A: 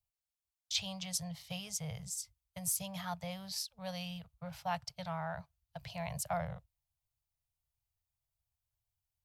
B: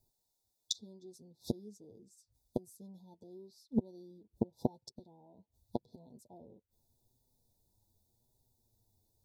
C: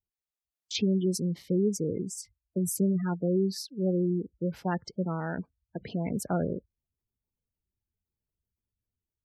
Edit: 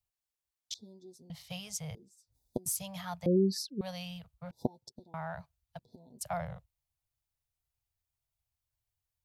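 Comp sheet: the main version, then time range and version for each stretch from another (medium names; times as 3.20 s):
A
0.74–1.30 s: from B
1.95–2.66 s: from B
3.26–3.81 s: from C
4.51–5.14 s: from B
5.79–6.21 s: from B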